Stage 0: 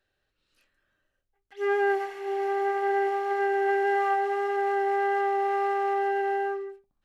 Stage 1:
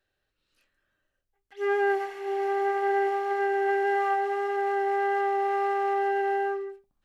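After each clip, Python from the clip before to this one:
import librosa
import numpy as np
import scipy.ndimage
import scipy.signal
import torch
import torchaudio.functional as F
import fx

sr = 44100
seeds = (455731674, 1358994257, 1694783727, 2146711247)

y = fx.rider(x, sr, range_db=10, speed_s=2.0)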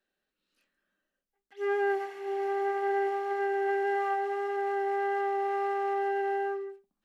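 y = fx.low_shelf_res(x, sr, hz=150.0, db=-9.5, q=3.0)
y = y * librosa.db_to_amplitude(-4.5)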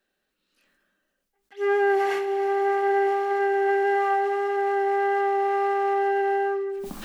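y = fx.sustainer(x, sr, db_per_s=22.0)
y = y * librosa.db_to_amplitude(6.5)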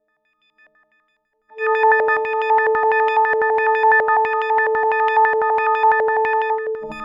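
y = fx.freq_snap(x, sr, grid_st=6)
y = fx.filter_held_lowpass(y, sr, hz=12.0, low_hz=590.0, high_hz=2900.0)
y = y * librosa.db_to_amplitude(2.0)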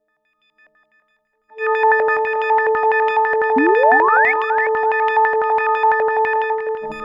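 y = fx.spec_paint(x, sr, seeds[0], shape='rise', start_s=3.56, length_s=0.76, low_hz=250.0, high_hz=2300.0, level_db=-16.0)
y = fx.echo_feedback(y, sr, ms=355, feedback_pct=18, wet_db=-12)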